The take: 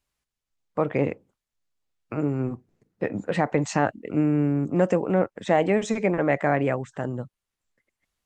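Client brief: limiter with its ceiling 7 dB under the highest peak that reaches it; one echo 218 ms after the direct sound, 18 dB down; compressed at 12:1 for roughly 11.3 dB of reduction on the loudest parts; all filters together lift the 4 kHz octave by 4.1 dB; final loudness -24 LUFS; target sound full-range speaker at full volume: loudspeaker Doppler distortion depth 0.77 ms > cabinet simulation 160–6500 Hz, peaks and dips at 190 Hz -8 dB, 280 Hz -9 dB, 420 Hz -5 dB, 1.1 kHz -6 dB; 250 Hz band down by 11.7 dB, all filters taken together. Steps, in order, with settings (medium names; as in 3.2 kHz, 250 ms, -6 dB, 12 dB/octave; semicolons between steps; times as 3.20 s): peaking EQ 250 Hz -5.5 dB; peaking EQ 4 kHz +5.5 dB; compression 12:1, threshold -28 dBFS; peak limiter -22.5 dBFS; delay 218 ms -18 dB; loudspeaker Doppler distortion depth 0.77 ms; cabinet simulation 160–6500 Hz, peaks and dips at 190 Hz -8 dB, 280 Hz -9 dB, 420 Hz -5 dB, 1.1 kHz -6 dB; trim +15.5 dB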